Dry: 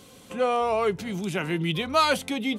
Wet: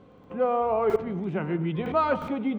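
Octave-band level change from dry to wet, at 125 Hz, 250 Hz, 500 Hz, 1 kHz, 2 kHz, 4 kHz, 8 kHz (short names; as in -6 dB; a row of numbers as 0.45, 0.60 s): 0.0 dB, 0.0 dB, +0.5 dB, -1.5 dB, -7.5 dB, -17.5 dB, under -20 dB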